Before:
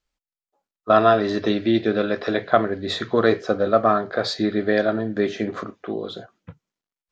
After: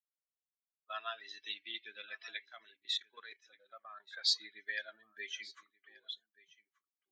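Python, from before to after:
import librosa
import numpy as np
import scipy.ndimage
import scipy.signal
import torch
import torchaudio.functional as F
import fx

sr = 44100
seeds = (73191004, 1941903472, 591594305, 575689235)

p1 = fx.bin_expand(x, sr, power=2.0)
p2 = fx.rider(p1, sr, range_db=4, speed_s=0.5)
p3 = scipy.signal.sosfilt(scipy.signal.cheby1(2, 1.0, 2900.0, 'highpass', fs=sr, output='sos'), p2)
p4 = fx.level_steps(p3, sr, step_db=16, at=(2.46, 4.0))
p5 = p4 + fx.echo_single(p4, sr, ms=1180, db=-22.0, dry=0)
y = p5 * librosa.db_to_amplitude(-2.0)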